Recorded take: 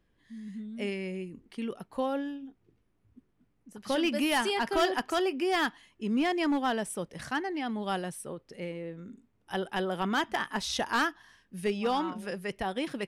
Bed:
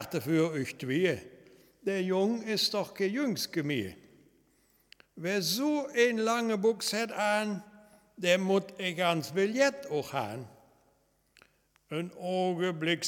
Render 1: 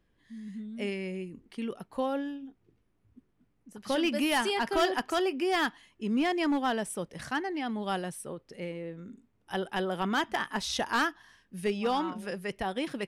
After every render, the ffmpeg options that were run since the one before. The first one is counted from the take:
-af anull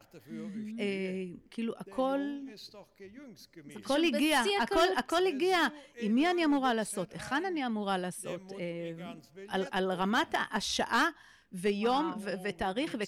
-filter_complex "[1:a]volume=0.1[s0];[0:a][s0]amix=inputs=2:normalize=0"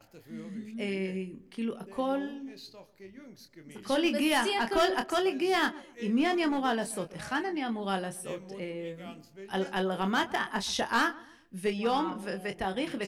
-filter_complex "[0:a]asplit=2[s0][s1];[s1]adelay=26,volume=0.398[s2];[s0][s2]amix=inputs=2:normalize=0,asplit=2[s3][s4];[s4]adelay=129,lowpass=f=1000:p=1,volume=0.133,asplit=2[s5][s6];[s6]adelay=129,lowpass=f=1000:p=1,volume=0.41,asplit=2[s7][s8];[s8]adelay=129,lowpass=f=1000:p=1,volume=0.41[s9];[s3][s5][s7][s9]amix=inputs=4:normalize=0"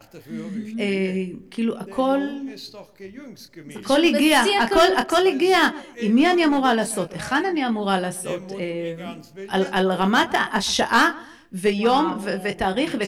-af "volume=3.16"

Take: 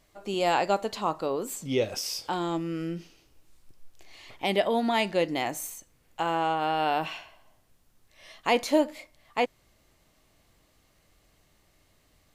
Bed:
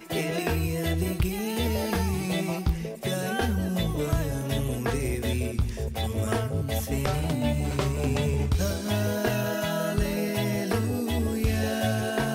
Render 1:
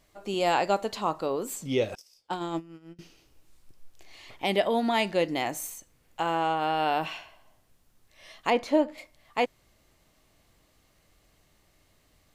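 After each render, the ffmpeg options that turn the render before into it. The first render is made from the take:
-filter_complex "[0:a]asettb=1/sr,asplit=3[s0][s1][s2];[s0]atrim=end=1.954[s3];[s1]atrim=start=1.95:end=2.99,asetpts=PTS-STARTPTS,afade=t=in:d=0.004:c=qsin,afade=t=out:st=1.036:d=0.004:c=qsin,agate=range=0.0398:threshold=0.0316:ratio=16:release=100:detection=peak[s4];[s2]atrim=start=2.986[s5];[s3][s4]acrossfade=d=0.004:c1=hsin:c2=qsin[s6];[s6][s5]acrossfade=d=0.004:c1=qsin:c2=hsin,asettb=1/sr,asplit=3[s7][s8][s9];[s7]atrim=end=8.504[s10];[s8]atrim=start=8.5:end=8.98,asetpts=PTS-STARTPTS,afade=t=in:d=0.004:c=qsin,afade=t=out:st=0.476:d=0.004:c=qsin,lowpass=f=2000:p=1[s11];[s9]atrim=start=8.976[s12];[s10][s11]acrossfade=d=0.004:c1=hsin:c2=qsin[s13];[s13][s12]acrossfade=d=0.004:c1=qsin:c2=hsin"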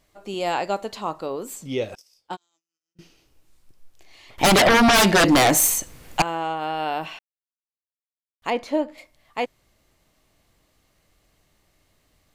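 -filter_complex "[0:a]asplit=3[s0][s1][s2];[s0]afade=t=out:st=2.35:d=0.02[s3];[s1]bandpass=f=6100:t=q:w=19,afade=t=in:st=2.35:d=0.02,afade=t=out:st=2.95:d=0.02[s4];[s2]afade=t=in:st=2.95:d=0.02[s5];[s3][s4][s5]amix=inputs=3:normalize=0,asettb=1/sr,asplit=3[s6][s7][s8];[s6]atrim=end=4.384[s9];[s7]atrim=start=4.38:end=6.22,asetpts=PTS-STARTPTS,afade=t=in:d=0.004:c=qsin,afade=t=out:st=1.836:d=0.004:c=qsin,aeval=exprs='0.266*sin(PI/2*6.31*val(0)/0.266)':c=same[s10];[s8]atrim=start=6.216[s11];[s9][s10]acrossfade=d=0.004:c1=hsin:c2=qsin[s12];[s12][s11]acrossfade=d=0.004:c1=qsin:c2=hsin,asplit=3[s13][s14][s15];[s13]atrim=end=7.19,asetpts=PTS-STARTPTS,afade=t=out:st=7.186:d=0.004:c=hsin[s16];[s14]atrim=start=7.19:end=8.42,asetpts=PTS-STARTPTS,volume=0[s17];[s15]atrim=start=8.42,asetpts=PTS-STARTPTS,afade=t=in:d=0.004:c=hsin[s18];[s16][s17][s18]concat=n=3:v=0:a=1"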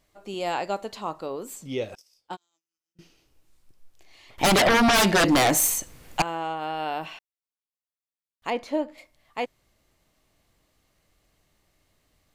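-af "volume=0.668"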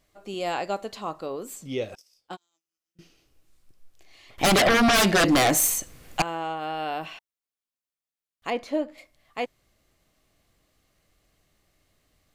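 -af "bandreject=f=910:w=10"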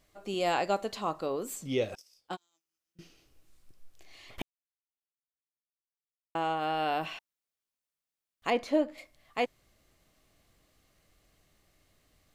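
-filter_complex "[0:a]asplit=3[s0][s1][s2];[s0]atrim=end=4.42,asetpts=PTS-STARTPTS,afade=t=out:st=4.416:d=0.004:c=hsin[s3];[s1]atrim=start=4.42:end=6.35,asetpts=PTS-STARTPTS,volume=0[s4];[s2]atrim=start=6.35,asetpts=PTS-STARTPTS,afade=t=in:d=0.004:c=hsin[s5];[s3][s4][s5]concat=n=3:v=0:a=1"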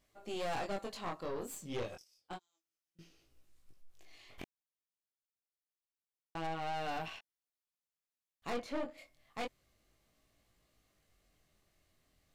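-af "flanger=delay=17.5:depth=7.7:speed=0.29,aeval=exprs='(tanh(50.1*val(0)+0.65)-tanh(0.65))/50.1':c=same"

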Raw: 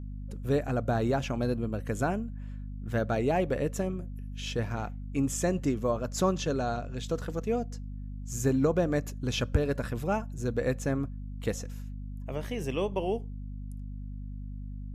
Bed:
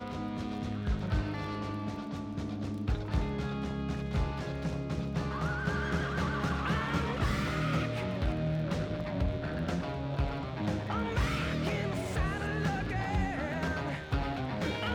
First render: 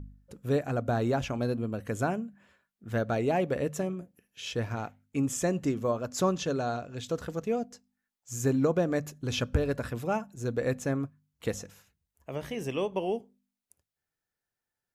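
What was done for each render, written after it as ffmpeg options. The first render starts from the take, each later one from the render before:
-af "bandreject=f=50:t=h:w=4,bandreject=f=100:t=h:w=4,bandreject=f=150:t=h:w=4,bandreject=f=200:t=h:w=4,bandreject=f=250:t=h:w=4"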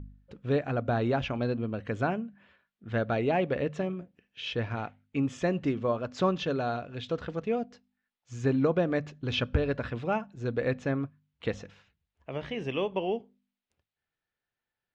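-af "lowpass=f=3400:w=0.5412,lowpass=f=3400:w=1.3066,aemphasis=mode=production:type=75kf"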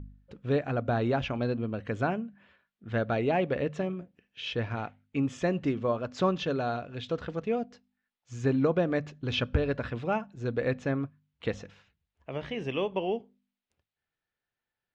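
-af anull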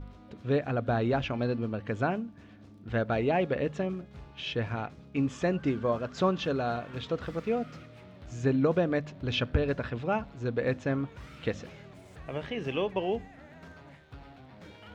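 -filter_complex "[1:a]volume=0.15[s0];[0:a][s0]amix=inputs=2:normalize=0"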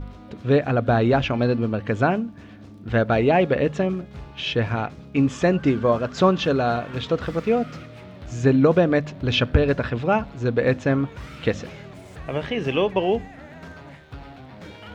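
-af "volume=2.82"

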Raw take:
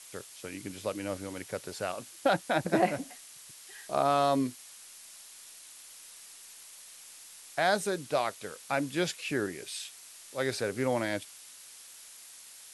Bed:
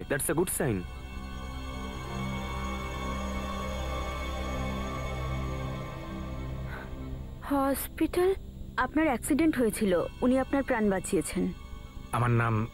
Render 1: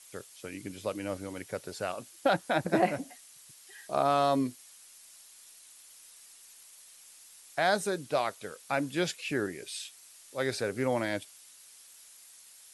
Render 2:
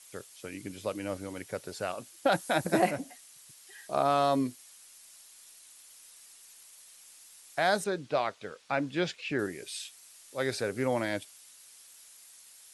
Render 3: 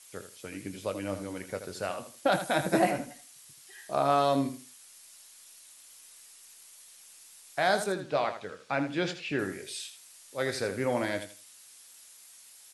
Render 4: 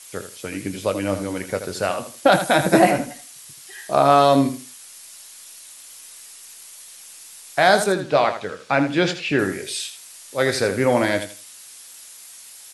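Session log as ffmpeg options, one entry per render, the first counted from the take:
-af "afftdn=nr=6:nf=-51"
-filter_complex "[0:a]asettb=1/sr,asplit=3[s0][s1][s2];[s0]atrim=end=2.324[s3];[s1]atrim=start=2.32:end=2.91,asetpts=PTS-STARTPTS,afade=t=in:d=0.004:c=qsin,afade=t=out:st=0.586:d=0.004:c=qsin,highshelf=f=5800:g=11[s4];[s2]atrim=start=2.906[s5];[s3][s4]acrossfade=d=0.004:c1=hsin:c2=qsin[s6];[s6][s5]acrossfade=d=0.004:c1=qsin:c2=hsin,asettb=1/sr,asplit=3[s7][s8][s9];[s7]atrim=end=7.844[s10];[s8]atrim=start=7.84:end=9.39,asetpts=PTS-STARTPTS,afade=t=in:d=0.004:c=qsin,afade=t=out:st=1.546:d=0.004:c=qsin,lowpass=4600[s11];[s9]atrim=start=9.386[s12];[s10][s11]acrossfade=d=0.004:c1=hsin:c2=qsin[s13];[s13][s12]acrossfade=d=0.004:c1=qsin:c2=hsin"
-filter_complex "[0:a]asplit=2[s0][s1];[s1]adelay=21,volume=0.299[s2];[s0][s2]amix=inputs=2:normalize=0,aecho=1:1:80|160|240:0.316|0.0727|0.0167"
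-af "volume=3.55,alimiter=limit=0.708:level=0:latency=1"

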